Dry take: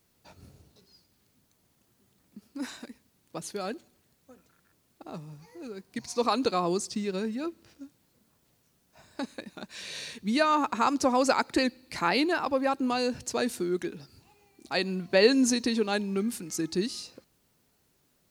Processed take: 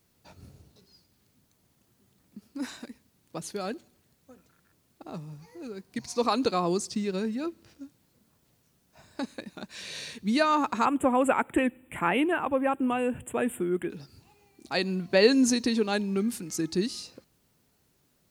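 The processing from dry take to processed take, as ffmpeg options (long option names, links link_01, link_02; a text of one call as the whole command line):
ffmpeg -i in.wav -filter_complex "[0:a]asettb=1/sr,asplit=3[link_01][link_02][link_03];[link_01]atrim=end=10.854[link_04];[link_02]atrim=start=10.85:end=13.9,asetpts=PTS-STARTPTS,afade=type=in:duration=0.004:curve=qsin,afade=type=out:start_time=3.046:duration=0.004:curve=qsin,asuperstop=centerf=5100:order=12:qfactor=1.2[link_05];[link_03]atrim=start=13.896[link_06];[link_04][link_05]acrossfade=duration=0.004:curve1=hsin:curve2=qsin[link_07];[link_07][link_06]acrossfade=duration=0.004:curve1=qsin:curve2=hsin,equalizer=frequency=110:width=0.53:gain=3" out.wav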